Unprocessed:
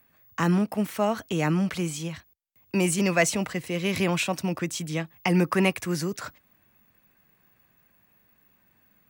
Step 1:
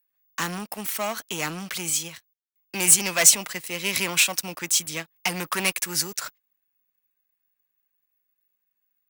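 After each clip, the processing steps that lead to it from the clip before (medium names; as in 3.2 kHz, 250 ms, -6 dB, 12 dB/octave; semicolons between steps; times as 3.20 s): waveshaping leveller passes 3; tilt EQ +3.5 dB/octave; upward expansion 1.5:1, over -34 dBFS; trim -4 dB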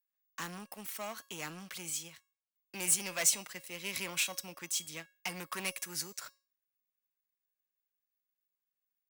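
feedback comb 550 Hz, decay 0.36 s, mix 60%; trim -5.5 dB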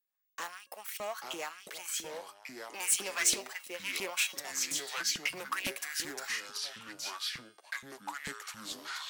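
LFO high-pass saw up 3 Hz 270–3400 Hz; ever faster or slower copies 708 ms, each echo -5 st, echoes 3, each echo -6 dB; loudspeaker Doppler distortion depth 0.48 ms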